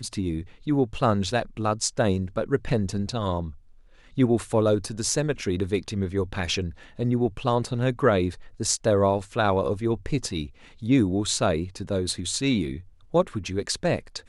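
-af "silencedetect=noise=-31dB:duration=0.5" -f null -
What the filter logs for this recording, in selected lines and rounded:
silence_start: 3.49
silence_end: 4.18 | silence_duration: 0.68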